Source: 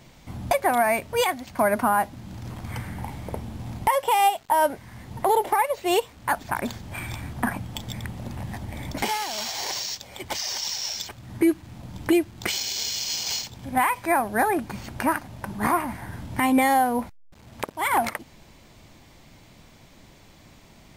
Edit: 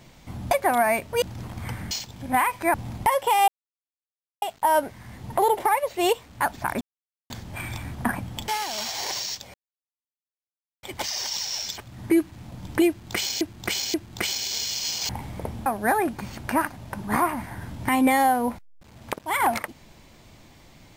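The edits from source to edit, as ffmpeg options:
-filter_complex "[0:a]asplit=12[a][b][c][d][e][f][g][h][i][j][k][l];[a]atrim=end=1.222[m];[b]atrim=start=2.288:end=2.982[n];[c]atrim=start=13.338:end=14.172[o];[d]atrim=start=3.548:end=4.29,asetpts=PTS-STARTPTS,afade=t=out:st=0.738:d=0.004:c=hsin,apad=pad_dur=0.94[p];[e]atrim=start=4.29:end=6.68,asetpts=PTS-STARTPTS,afade=t=in:d=0.004:c=hsin,afade=t=out:st=2.386:d=0.004:c=hsin,apad=pad_dur=0.49[q];[f]atrim=start=6.68:end=7.862,asetpts=PTS-STARTPTS,afade=t=in:d=0.004:c=hsin[r];[g]atrim=start=9.078:end=10.14,asetpts=PTS-STARTPTS,afade=t=out:st=1.058:d=0.004:c=hsin,apad=pad_dur=1.29[s];[h]atrim=start=10.14:end=12.722,asetpts=PTS-STARTPTS,afade=t=in:d=0.004:c=hsin[t];[i]atrim=start=12.188:end=12.722[u];[j]atrim=start=12.188:end=13.342[v];[k]atrim=start=2.978:end=3.552[w];[l]atrim=start=14.168[x];[m][n]acrossfade=d=0.004:c1=hsin:c2=hsin[y];[y][o]acrossfade=d=0.004:c1=hsin:c2=hsin[z];[p][q][r]concat=n=3:v=0:a=1[aa];[z][aa]acrossfade=d=0.004:c1=hsin:c2=hsin[ab];[s][t]concat=n=2:v=0:a=1[ac];[ab][ac]acrossfade=d=0.004:c1=hsin:c2=hsin[ad];[ad][u]acrossfade=d=0.004:c1=hsin:c2=hsin[ae];[ae][v]acrossfade=d=0.004:c1=hsin:c2=hsin[af];[af][w]acrossfade=d=0.004:c1=hsin:c2=hsin[ag];[ag][x]acrossfade=d=0.004:c1=hsin:c2=hsin"

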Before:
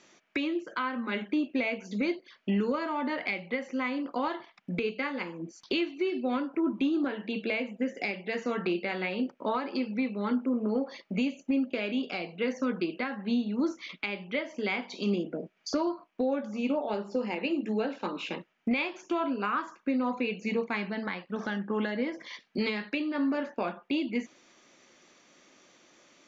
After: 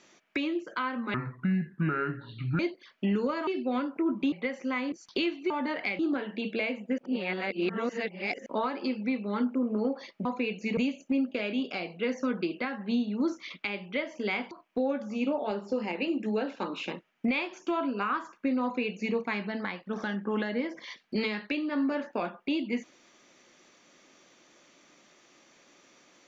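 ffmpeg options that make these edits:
-filter_complex "[0:a]asplit=13[a][b][c][d][e][f][g][h][i][j][k][l][m];[a]atrim=end=1.144[n];[b]atrim=start=1.14:end=2.04,asetpts=PTS-STARTPTS,asetrate=27342,aresample=44100,atrim=end_sample=64016,asetpts=PTS-STARTPTS[o];[c]atrim=start=2.036:end=2.922[p];[d]atrim=start=6.048:end=6.902[q];[e]atrim=start=3.408:end=4.012[r];[f]atrim=start=5.468:end=6.052[s];[g]atrim=start=2.918:end=3.412[t];[h]atrim=start=6.898:end=7.892[u];[i]atrim=start=7.888:end=9.372,asetpts=PTS-STARTPTS,areverse[v];[j]atrim=start=9.368:end=11.162[w];[k]atrim=start=20.058:end=20.582[x];[l]atrim=start=11.158:end=14.902[y];[m]atrim=start=15.938[z];[n][o]acrossfade=d=0.004:c1=hsin:c2=hsin[aa];[aa][p]acrossfade=d=0.004:c1=hsin:c2=hsin[ab];[ab][q]acrossfade=d=0.004:c1=hsin:c2=hsin[ac];[ac][r]acrossfade=d=0.004:c1=hsin:c2=hsin[ad];[ad][s]acrossfade=d=0.004:c1=hsin:c2=hsin[ae];[ae][t]acrossfade=d=0.004:c1=hsin:c2=hsin[af];[af][u]acrossfade=d=0.004:c1=hsin:c2=hsin[ag];[ag][v]acrossfade=d=0.004:c1=hsin:c2=hsin[ah];[ah][w]acrossfade=d=0.004:c1=hsin:c2=hsin[ai];[ai][x]acrossfade=d=0.004:c1=hsin:c2=hsin[aj];[aj][y]acrossfade=d=0.004:c1=hsin:c2=hsin[ak];[ak][z]acrossfade=d=0.004:c1=hsin:c2=hsin"

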